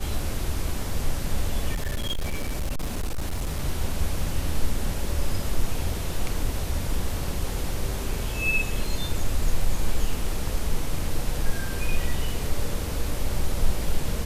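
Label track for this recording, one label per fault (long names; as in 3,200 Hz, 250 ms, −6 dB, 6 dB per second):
1.740000	3.590000	clipping −23 dBFS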